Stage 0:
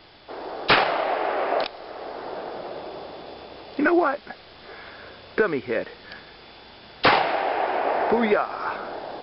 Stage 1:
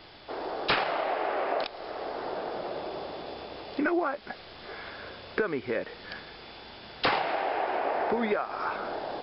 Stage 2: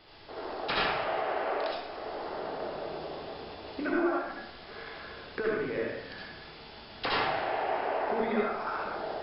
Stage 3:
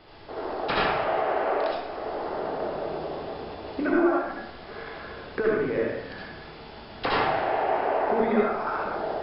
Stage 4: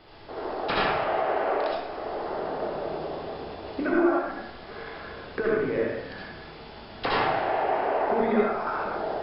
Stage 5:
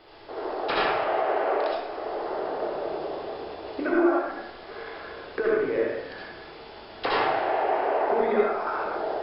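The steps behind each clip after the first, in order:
compressor 2:1, threshold -30 dBFS, peak gain reduction 9.5 dB
reverb RT60 0.70 s, pre-delay 62 ms, DRR -4.5 dB; gain -7.5 dB
high shelf 2200 Hz -9.5 dB; gain +7 dB
de-hum 72.8 Hz, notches 40
resonant low shelf 270 Hz -6.5 dB, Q 1.5

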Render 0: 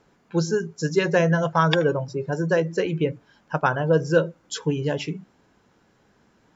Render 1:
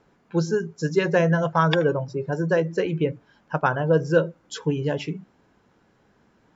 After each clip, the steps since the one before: high shelf 4200 Hz -7 dB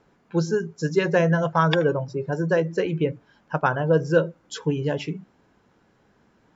nothing audible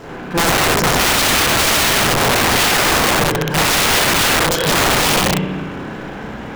power-law curve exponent 0.5; spring tank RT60 1.5 s, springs 32/50 ms, chirp 70 ms, DRR -8.5 dB; wrapped overs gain 7 dB; gain -2.5 dB

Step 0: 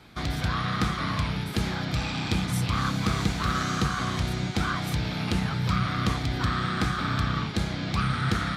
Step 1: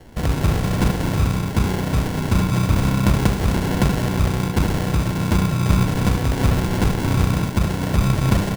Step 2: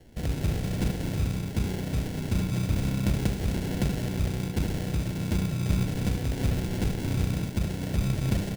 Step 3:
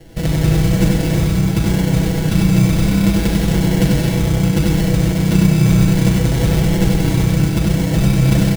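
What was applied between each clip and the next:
low shelf 63 Hz +10 dB; sample-and-hold 36×; on a send: echo 76 ms -8.5 dB; on the sum: gain +6 dB
bell 1100 Hz -11.5 dB 0.81 oct; gain -8.5 dB
in parallel at +0.5 dB: limiter -21 dBFS, peak gain reduction 7.5 dB; on the sum: comb 6.1 ms, depth 67%; loudspeakers at several distances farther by 33 m -3 dB, 77 m -9 dB; gain +4.5 dB

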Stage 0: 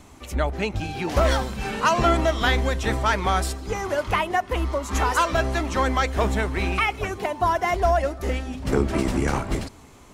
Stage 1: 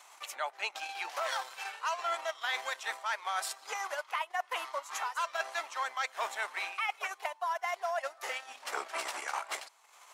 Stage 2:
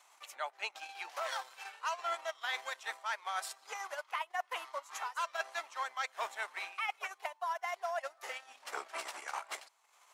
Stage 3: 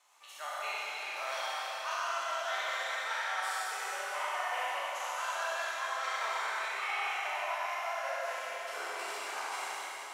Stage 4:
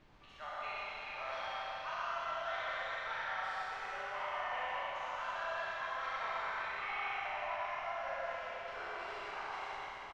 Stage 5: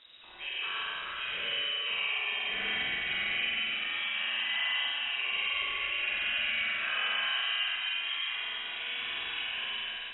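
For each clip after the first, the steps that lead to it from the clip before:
transient shaper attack +4 dB, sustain -10 dB; HPF 760 Hz 24 dB/oct; reverse; compressor 6:1, threshold -30 dBFS, peak gain reduction 15.5 dB; reverse; gain -1.5 dB
upward expander 1.5:1, over -42 dBFS; gain -2 dB
spectral trails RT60 1.19 s; Schroeder reverb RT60 3.9 s, combs from 31 ms, DRR -6.5 dB; gain -7.5 dB
added noise pink -59 dBFS; air absorption 240 m; on a send: echo 0.115 s -6 dB; on the sum: gain -3.5 dB
flutter echo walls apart 8.2 m, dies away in 0.82 s; inverted band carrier 3800 Hz; spectral gate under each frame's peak -30 dB strong; gain +5 dB

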